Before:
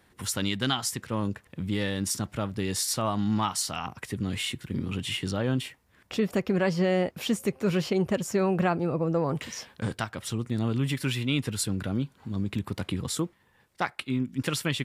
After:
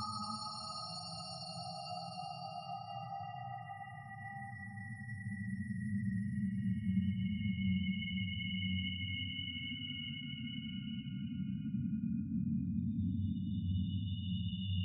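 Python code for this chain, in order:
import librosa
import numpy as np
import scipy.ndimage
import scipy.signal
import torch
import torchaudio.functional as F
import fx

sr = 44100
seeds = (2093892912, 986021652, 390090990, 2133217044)

y = fx.spec_topn(x, sr, count=2)
y = fx.paulstretch(y, sr, seeds[0], factor=10.0, window_s=0.5, from_s=3.54)
y = fx.room_flutter(y, sr, wall_m=9.1, rt60_s=0.22)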